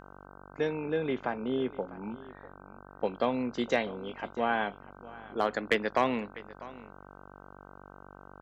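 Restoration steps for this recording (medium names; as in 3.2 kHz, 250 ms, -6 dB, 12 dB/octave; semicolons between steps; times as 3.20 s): clip repair -14.5 dBFS; de-hum 48.1 Hz, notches 32; inverse comb 648 ms -19 dB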